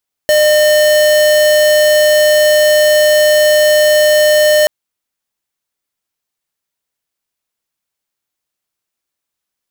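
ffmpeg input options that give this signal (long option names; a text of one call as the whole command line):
ffmpeg -f lavfi -i "aevalsrc='0.355*(2*lt(mod(606*t,1),0.5)-1)':duration=4.38:sample_rate=44100" out.wav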